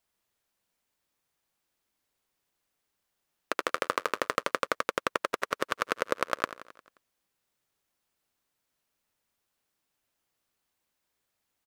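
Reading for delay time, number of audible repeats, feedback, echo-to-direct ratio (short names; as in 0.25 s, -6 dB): 88 ms, 5, 58%, -12.5 dB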